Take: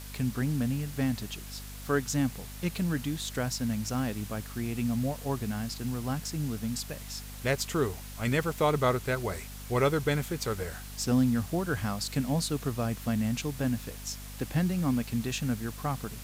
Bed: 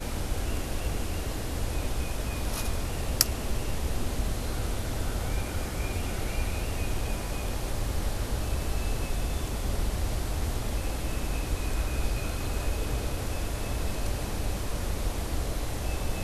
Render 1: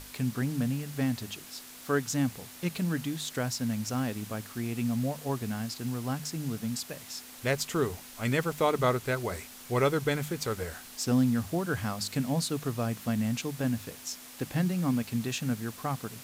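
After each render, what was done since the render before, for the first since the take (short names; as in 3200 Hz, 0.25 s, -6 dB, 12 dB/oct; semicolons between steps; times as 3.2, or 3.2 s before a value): notches 50/100/150/200 Hz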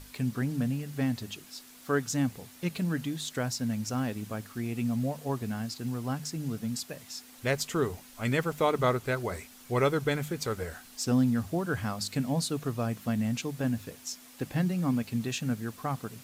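denoiser 6 dB, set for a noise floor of -48 dBFS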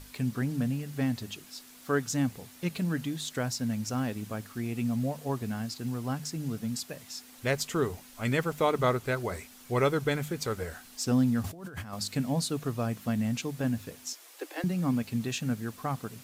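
11.44–11.93 negative-ratio compressor -41 dBFS; 14.13–14.64 steep high-pass 300 Hz 96 dB/oct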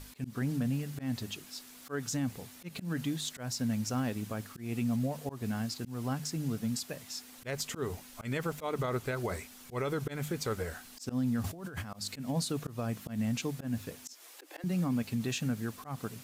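auto swell 0.171 s; limiter -24 dBFS, peak gain reduction 11 dB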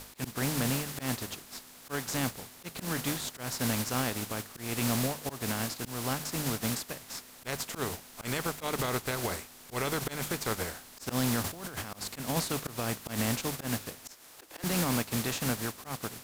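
spectral contrast lowered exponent 0.5; in parallel at -10 dB: sample-rate reducer 3700 Hz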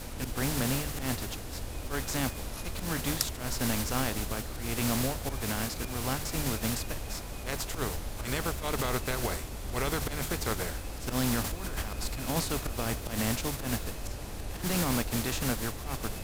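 add bed -8 dB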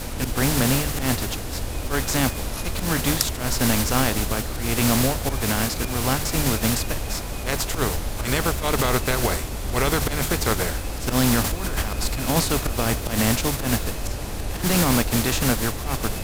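gain +9.5 dB; limiter -3 dBFS, peak gain reduction 2.5 dB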